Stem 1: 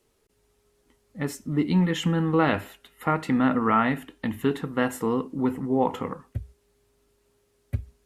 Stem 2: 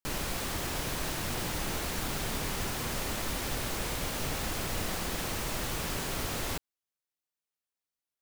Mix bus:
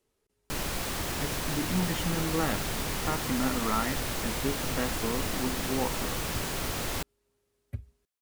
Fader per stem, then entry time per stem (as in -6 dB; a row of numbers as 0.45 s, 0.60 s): -8.5 dB, +1.5 dB; 0.00 s, 0.45 s